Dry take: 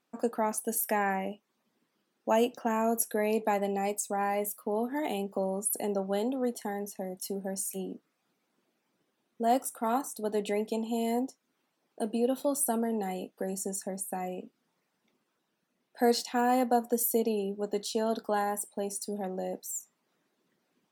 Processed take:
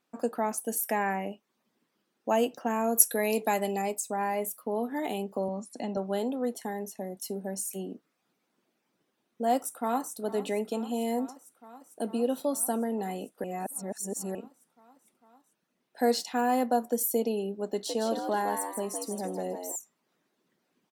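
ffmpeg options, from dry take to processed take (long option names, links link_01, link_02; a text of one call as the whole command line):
ffmpeg -i in.wav -filter_complex "[0:a]asettb=1/sr,asplit=3[link_01][link_02][link_03];[link_01]atrim=end=2.964[link_04];[link_02]atrim=start=2.96:end=3.82,asetpts=PTS-STARTPTS,afade=type=in:duration=0.004:curve=qsin,afade=type=out:start_time=0.856:duration=0.004:curve=qsin,highshelf=frequency=2700:gain=10.5[link_05];[link_03]atrim=start=3.816[link_06];[link_04][link_05]acrossfade=duration=0.004:curve1=hsin:curve2=qsin[link_07];[link_07][link_06]acrossfade=duration=0.004:curve1=qsin:curve2=hsin,asettb=1/sr,asplit=3[link_08][link_09][link_10];[link_08]atrim=end=5.484[link_11];[link_09]atrim=start=5.48:end=5.97,asetpts=PTS-STARTPTS,afade=type=in:duration=0.004:curve=qsin,afade=type=out:start_time=0.486:duration=0.004:curve=qsin,highpass=130,equalizer=frequency=250:width_type=q:width=4:gain=8,equalizer=frequency=410:width_type=q:width=4:gain=-10,equalizer=frequency=4000:width_type=q:width=4:gain=4,lowpass=frequency=5900:width=0.5412,lowpass=frequency=5900:width=1.3066[link_12];[link_10]atrim=start=5.966[link_13];[link_11][link_12]acrossfade=duration=0.004:curve1=hsin:curve2=qsin[link_14];[link_14][link_13]acrossfade=duration=0.004:curve1=qsin:curve2=hsin,asplit=2[link_15][link_16];[link_16]afade=type=in:start_time=9.56:duration=0.01,afade=type=out:start_time=10.14:duration=0.01,aecho=0:1:450|900|1350|1800|2250|2700|3150|3600|4050|4500|4950|5400:0.158489|0.134716|0.114509|0.0973323|0.0827324|0.0703226|0.0597742|0.050808|0.0431868|0.0367088|0.0312025|0.0265221[link_17];[link_15][link_17]amix=inputs=2:normalize=0,asettb=1/sr,asplit=3[link_18][link_19][link_20];[link_18]atrim=end=17.704[link_21];[link_19]atrim=start=17.7:end=19.76,asetpts=PTS-STARTPTS,afade=type=in:duration=0.004:curve=qsin,afade=type=out:start_time=2.056:duration=0.004:curve=qsin,asplit=5[link_22][link_23][link_24][link_25][link_26];[link_23]adelay=161,afreqshift=81,volume=-6dB[link_27];[link_24]adelay=322,afreqshift=162,volume=-15.1dB[link_28];[link_25]adelay=483,afreqshift=243,volume=-24.2dB[link_29];[link_26]adelay=644,afreqshift=324,volume=-33.4dB[link_30];[link_22][link_27][link_28][link_29][link_30]amix=inputs=5:normalize=0,atrim=end_sample=90846[link_31];[link_20]atrim=start=19.756[link_32];[link_21][link_31]acrossfade=duration=0.004:curve1=hsin:curve2=qsin[link_33];[link_33][link_32]acrossfade=duration=0.004:curve1=qsin:curve2=hsin,asplit=3[link_34][link_35][link_36];[link_34]atrim=end=13.442[link_37];[link_35]atrim=start=13.438:end=14.352,asetpts=PTS-STARTPTS,areverse[link_38];[link_36]atrim=start=14.348[link_39];[link_37][link_38]acrossfade=duration=0.004:curve1=hsin:curve2=hsin[link_40];[link_40][link_39]acrossfade=duration=0.004:curve1=hsin:curve2=hsin" out.wav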